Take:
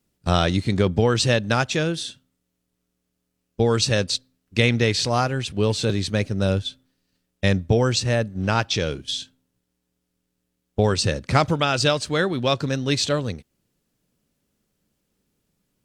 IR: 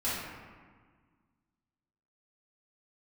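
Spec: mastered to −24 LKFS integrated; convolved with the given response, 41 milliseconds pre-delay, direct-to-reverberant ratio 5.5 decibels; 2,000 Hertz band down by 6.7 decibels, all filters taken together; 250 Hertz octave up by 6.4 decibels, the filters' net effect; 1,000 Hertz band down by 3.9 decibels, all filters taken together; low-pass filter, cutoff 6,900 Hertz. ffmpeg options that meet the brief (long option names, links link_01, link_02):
-filter_complex "[0:a]lowpass=6900,equalizer=frequency=250:width_type=o:gain=8.5,equalizer=frequency=1000:width_type=o:gain=-4,equalizer=frequency=2000:width_type=o:gain=-8,asplit=2[link_01][link_02];[1:a]atrim=start_sample=2205,adelay=41[link_03];[link_02][link_03]afir=irnorm=-1:irlink=0,volume=-13.5dB[link_04];[link_01][link_04]amix=inputs=2:normalize=0,volume=-5dB"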